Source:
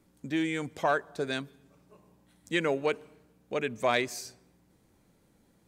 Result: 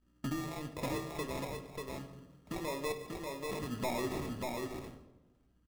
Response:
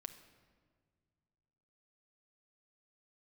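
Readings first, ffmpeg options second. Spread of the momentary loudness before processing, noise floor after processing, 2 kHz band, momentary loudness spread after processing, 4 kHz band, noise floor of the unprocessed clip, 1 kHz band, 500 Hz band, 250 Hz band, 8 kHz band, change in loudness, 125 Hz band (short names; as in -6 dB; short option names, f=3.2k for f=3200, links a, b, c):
10 LU, -70 dBFS, -11.5 dB, 10 LU, -7.5 dB, -67 dBFS, -7.0 dB, -7.5 dB, -4.5 dB, -3.0 dB, -8.5 dB, 0.0 dB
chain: -filter_complex "[0:a]bandreject=f=85.93:t=h:w=4,bandreject=f=171.86:t=h:w=4,bandreject=f=257.79:t=h:w=4,bandreject=f=343.72:t=h:w=4,agate=range=-33dB:threshold=-53dB:ratio=3:detection=peak,lowshelf=f=320:g=7,alimiter=limit=-21dB:level=0:latency=1:release=143,acompressor=threshold=-37dB:ratio=6,aphaser=in_gain=1:out_gain=1:delay=2.2:decay=0.5:speed=0.5:type=sinusoidal,aeval=exprs='val(0)+0.000178*(sin(2*PI*60*n/s)+sin(2*PI*2*60*n/s)/2+sin(2*PI*3*60*n/s)/3+sin(2*PI*4*60*n/s)/4+sin(2*PI*5*60*n/s)/5)':c=same,aresample=16000,volume=32dB,asoftclip=hard,volume=-32dB,aresample=44100,acrusher=samples=29:mix=1:aa=0.000001,aecho=1:1:589:0.668[a];[1:a]atrim=start_sample=2205,asetrate=83790,aresample=44100[b];[a][b]afir=irnorm=-1:irlink=0,volume=11.5dB"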